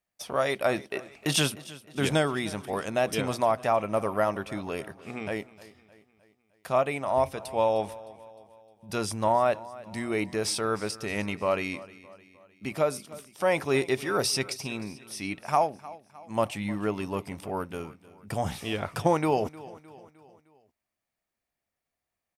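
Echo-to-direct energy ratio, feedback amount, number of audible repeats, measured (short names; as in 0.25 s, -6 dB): -18.0 dB, 50%, 3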